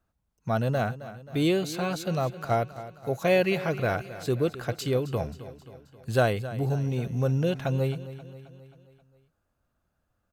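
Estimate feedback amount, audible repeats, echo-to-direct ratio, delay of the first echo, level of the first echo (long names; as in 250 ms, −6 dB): 55%, 4, −13.5 dB, 266 ms, −15.0 dB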